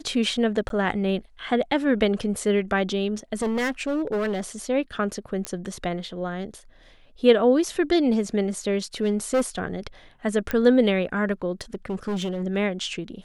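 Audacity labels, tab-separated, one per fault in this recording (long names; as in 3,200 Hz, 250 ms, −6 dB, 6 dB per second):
0.690000	0.700000	drop-out 12 ms
3.330000	4.410000	clipping −21.5 dBFS
5.450000	5.450000	click −12 dBFS
9.030000	9.590000	clipping −17 dBFS
10.510000	10.510000	click −12 dBFS
11.610000	12.440000	clipping −23.5 dBFS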